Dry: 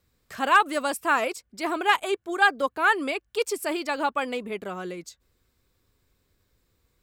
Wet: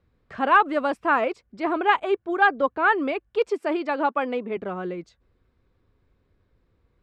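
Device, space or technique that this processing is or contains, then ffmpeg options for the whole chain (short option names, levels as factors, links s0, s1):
phone in a pocket: -filter_complex "[0:a]lowpass=3500,highshelf=f=2100:g=-11.5,asettb=1/sr,asplit=3[s0][s1][s2];[s0]atrim=end=3.484[s3];[s1]atrim=start=3.48:end=4.57,asetpts=PTS-STARTPTS,afade=t=in:d=0.004:c=qsin,afade=t=out:st=1.086:d=0.004:c=qsin,highpass=f=200:w=0.5412,highpass=f=200:w=1.3066[s4];[s2]atrim=start=4.566[s5];[s3][s4]acrossfade=d=0.004:c1=hsin:c2=qsin[s6];[s6][s5]acrossfade=d=0.004:c1=qsin:c2=hsin,volume=1.68"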